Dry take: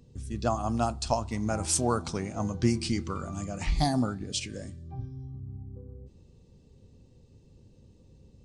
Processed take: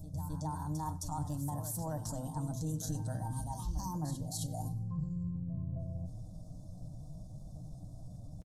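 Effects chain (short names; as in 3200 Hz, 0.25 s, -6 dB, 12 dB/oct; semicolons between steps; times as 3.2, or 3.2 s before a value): limiter -23.5 dBFS, peak gain reduction 11.5 dB; notches 50/100/150/200/250 Hz; pitch shift +5 st; band shelf 1900 Hz -13.5 dB; fixed phaser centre 960 Hz, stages 4; outdoor echo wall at 17 m, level -21 dB; reverse; compressor 6:1, threshold -46 dBFS, peak gain reduction 17 dB; reverse; low shelf 130 Hz +8.5 dB; comb 6.5 ms, depth 45%; on a send: reverse echo 0.265 s -9.5 dB; on the sum: gain +6.5 dB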